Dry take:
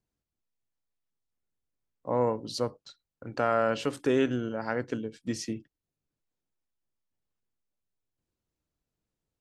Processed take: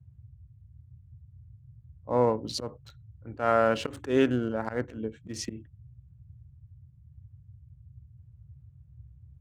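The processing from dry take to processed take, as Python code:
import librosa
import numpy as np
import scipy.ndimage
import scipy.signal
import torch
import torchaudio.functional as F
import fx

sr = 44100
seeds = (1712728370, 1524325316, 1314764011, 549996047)

y = fx.wiener(x, sr, points=9)
y = fx.auto_swell(y, sr, attack_ms=115.0)
y = fx.dmg_noise_band(y, sr, seeds[0], low_hz=59.0, high_hz=130.0, level_db=-54.0)
y = y * 10.0 ** (3.0 / 20.0)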